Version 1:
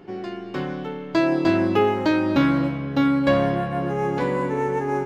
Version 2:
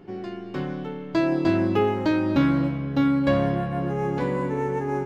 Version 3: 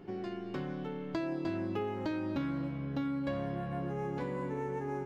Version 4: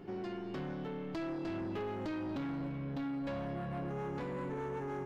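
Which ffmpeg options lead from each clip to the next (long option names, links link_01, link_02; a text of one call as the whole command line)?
ffmpeg -i in.wav -af "lowshelf=frequency=250:gain=7,volume=-4.5dB" out.wav
ffmpeg -i in.wav -af "acompressor=threshold=-32dB:ratio=3,volume=-3.5dB" out.wav
ffmpeg -i in.wav -af "asoftclip=type=tanh:threshold=-35.5dB,volume=1dB" out.wav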